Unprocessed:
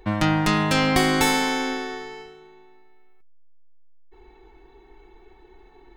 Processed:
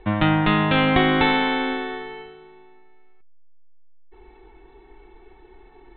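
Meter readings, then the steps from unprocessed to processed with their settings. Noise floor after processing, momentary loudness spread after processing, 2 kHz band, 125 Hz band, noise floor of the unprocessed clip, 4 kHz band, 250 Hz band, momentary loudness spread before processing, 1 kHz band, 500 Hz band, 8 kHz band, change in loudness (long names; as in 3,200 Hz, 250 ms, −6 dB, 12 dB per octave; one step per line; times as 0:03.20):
−50 dBFS, 14 LU, +2.0 dB, +2.0 dB, −52 dBFS, 0.0 dB, +2.0 dB, 14 LU, +2.0 dB, +2.0 dB, below −40 dB, +1.5 dB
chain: Butterworth low-pass 3,800 Hz 96 dB per octave
level +2 dB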